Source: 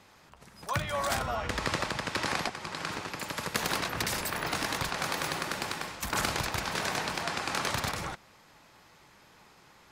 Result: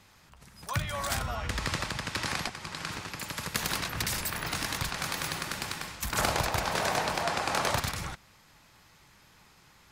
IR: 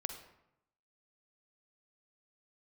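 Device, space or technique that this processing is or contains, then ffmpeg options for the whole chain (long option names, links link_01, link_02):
smiley-face EQ: -filter_complex "[0:a]lowshelf=frequency=160:gain=6,equalizer=frequency=470:width_type=o:width=2.5:gain=-6,highshelf=frequency=8200:gain=4,asettb=1/sr,asplit=3[link_01][link_02][link_03];[link_01]atrim=end=6.184[link_04];[link_02]atrim=start=6.18:end=7.8,asetpts=PTS-STARTPTS,afade=type=in:duration=0.004:curve=qsin,afade=type=out:start_time=1.616:duration=0.004:curve=qsin,equalizer=frequency=630:width_type=o:width=1.6:gain=12[link_05];[link_03]atrim=start=7.796[link_06];[link_04][link_05]acrossfade=duration=0.004:curve1=hsin:curve2=qsin[link_07];[link_07][link_06]acrossfade=duration=0.004:curve1=qsin:curve2=hsin"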